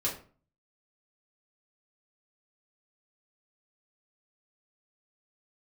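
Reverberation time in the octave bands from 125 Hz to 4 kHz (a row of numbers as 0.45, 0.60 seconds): 0.60, 0.50, 0.45, 0.40, 0.35, 0.30 seconds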